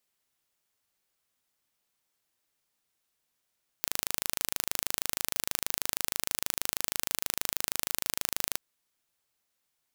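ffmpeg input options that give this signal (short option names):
-f lavfi -i "aevalsrc='0.841*eq(mod(n,1677),0)':d=4.72:s=44100"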